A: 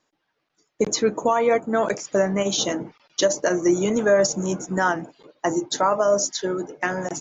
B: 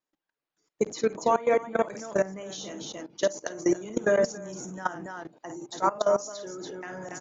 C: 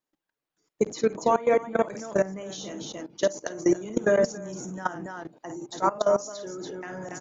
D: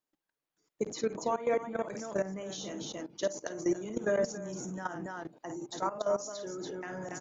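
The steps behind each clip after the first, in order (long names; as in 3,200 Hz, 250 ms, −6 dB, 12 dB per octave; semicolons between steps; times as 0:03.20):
loudspeakers that aren't time-aligned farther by 18 metres −10 dB, 97 metres −8 dB; output level in coarse steps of 18 dB; level −2.5 dB
low-shelf EQ 400 Hz +4 dB
brickwall limiter −18 dBFS, peak gain reduction 9 dB; level −3 dB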